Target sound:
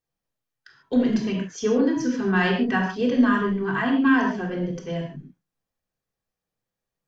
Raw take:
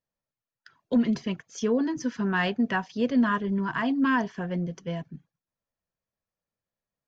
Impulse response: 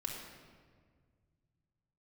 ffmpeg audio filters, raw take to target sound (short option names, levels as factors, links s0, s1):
-filter_complex "[0:a]asettb=1/sr,asplit=3[s0][s1][s2];[s0]atrim=end=3.594[s3];[s1]atrim=start=3.59:end=4.14,asetpts=PTS-STARTPTS,afade=t=in:d=0.004:c=qsin,afade=t=out:st=0.546:d=0.004:c=qsin,equalizer=f=5100:t=o:w=0.21:g=-12.5[s4];[s2]atrim=start=4.136[s5];[s3][s4]acrossfade=d=0.004:c1=hsin:c2=qsin[s6];[s6][s5]acrossfade=d=0.004:c1=qsin:c2=hsin[s7];[1:a]atrim=start_sample=2205,afade=t=out:st=0.25:d=0.01,atrim=end_sample=11466,asetrate=57330,aresample=44100[s8];[s7][s8]afir=irnorm=-1:irlink=0,volume=2"